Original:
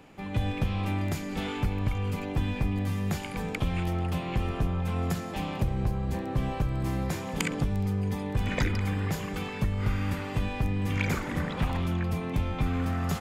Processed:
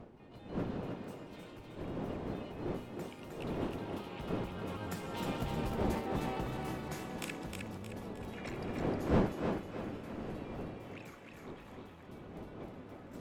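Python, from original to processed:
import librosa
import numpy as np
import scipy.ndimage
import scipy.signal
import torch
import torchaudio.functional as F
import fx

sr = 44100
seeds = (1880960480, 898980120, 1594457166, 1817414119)

p1 = fx.pitch_trill(x, sr, semitones=2.5, every_ms=101)
p2 = fx.doppler_pass(p1, sr, speed_mps=13, closest_m=7.5, pass_at_s=5.85)
p3 = fx.dmg_wind(p2, sr, seeds[0], corner_hz=290.0, level_db=-35.0)
p4 = fx.low_shelf(p3, sr, hz=160.0, db=-11.0)
p5 = p4 + fx.echo_thinned(p4, sr, ms=311, feedback_pct=42, hz=190.0, wet_db=-4.0, dry=0)
y = p5 * 10.0 ** (-2.0 / 20.0)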